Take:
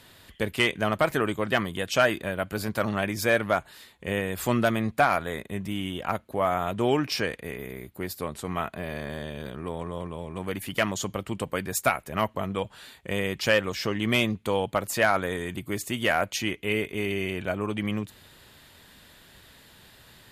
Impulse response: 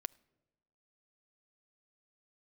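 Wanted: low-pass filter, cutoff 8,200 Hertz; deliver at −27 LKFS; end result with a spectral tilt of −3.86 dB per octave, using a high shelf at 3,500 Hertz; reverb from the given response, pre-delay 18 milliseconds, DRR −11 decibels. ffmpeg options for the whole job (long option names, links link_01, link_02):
-filter_complex "[0:a]lowpass=8200,highshelf=frequency=3500:gain=7,asplit=2[link_01][link_02];[1:a]atrim=start_sample=2205,adelay=18[link_03];[link_02][link_03]afir=irnorm=-1:irlink=0,volume=14dB[link_04];[link_01][link_04]amix=inputs=2:normalize=0,volume=-11.5dB"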